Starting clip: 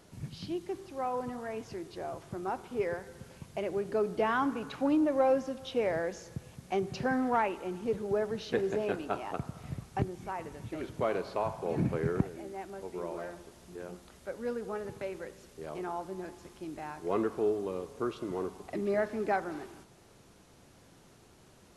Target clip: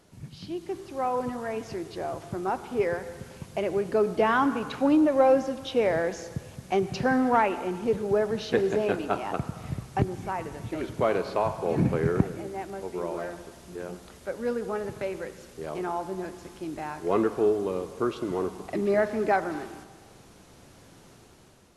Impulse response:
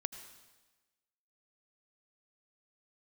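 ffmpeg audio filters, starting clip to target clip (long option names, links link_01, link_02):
-filter_complex "[0:a]dynaudnorm=framelen=270:gausssize=5:maxgain=7.5dB,asplit=2[link_01][link_02];[1:a]atrim=start_sample=2205,asetrate=34839,aresample=44100[link_03];[link_02][link_03]afir=irnorm=-1:irlink=0,volume=-3dB[link_04];[link_01][link_04]amix=inputs=2:normalize=0,volume=-6dB"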